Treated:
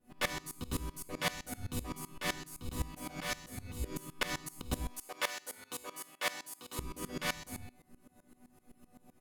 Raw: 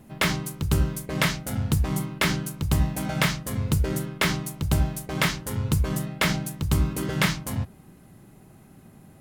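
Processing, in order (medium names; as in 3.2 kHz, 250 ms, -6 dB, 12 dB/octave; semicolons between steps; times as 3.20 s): 4.85–6.79 s: high-pass 460 Hz 12 dB/octave; chord resonator B3 minor, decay 0.36 s; on a send: early reflections 12 ms -7.5 dB, 49 ms -8 dB; on the sum: sawtooth tremolo in dB swelling 7.8 Hz, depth 20 dB; trim +14.5 dB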